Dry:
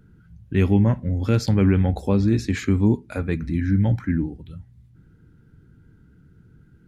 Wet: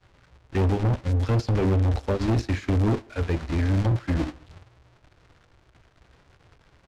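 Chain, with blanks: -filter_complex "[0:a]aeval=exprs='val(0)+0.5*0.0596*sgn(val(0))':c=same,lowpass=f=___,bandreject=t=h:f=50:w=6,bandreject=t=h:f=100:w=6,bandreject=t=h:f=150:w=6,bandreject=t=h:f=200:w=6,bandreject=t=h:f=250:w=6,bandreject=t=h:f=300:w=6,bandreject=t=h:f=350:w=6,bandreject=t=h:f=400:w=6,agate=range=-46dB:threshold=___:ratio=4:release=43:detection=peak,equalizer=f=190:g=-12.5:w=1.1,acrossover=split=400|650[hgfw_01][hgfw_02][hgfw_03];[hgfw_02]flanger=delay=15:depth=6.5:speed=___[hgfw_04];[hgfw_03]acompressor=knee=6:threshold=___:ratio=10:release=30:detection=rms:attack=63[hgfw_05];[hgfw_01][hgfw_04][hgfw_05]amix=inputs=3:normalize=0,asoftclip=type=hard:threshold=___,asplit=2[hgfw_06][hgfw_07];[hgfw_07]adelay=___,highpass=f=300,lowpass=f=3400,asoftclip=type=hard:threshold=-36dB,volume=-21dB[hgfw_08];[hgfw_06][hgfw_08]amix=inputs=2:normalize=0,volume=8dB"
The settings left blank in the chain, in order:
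5500, -20dB, 1.9, -48dB, -27dB, 140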